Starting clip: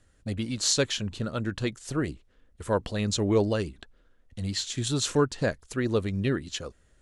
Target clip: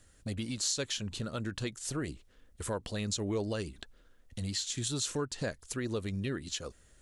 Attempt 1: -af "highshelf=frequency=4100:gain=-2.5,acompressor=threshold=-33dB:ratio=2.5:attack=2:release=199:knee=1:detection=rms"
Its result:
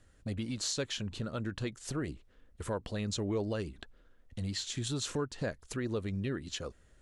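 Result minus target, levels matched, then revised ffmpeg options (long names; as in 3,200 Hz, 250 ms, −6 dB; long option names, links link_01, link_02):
8,000 Hz band −3.5 dB
-af "highshelf=frequency=4100:gain=9,acompressor=threshold=-33dB:ratio=2.5:attack=2:release=199:knee=1:detection=rms"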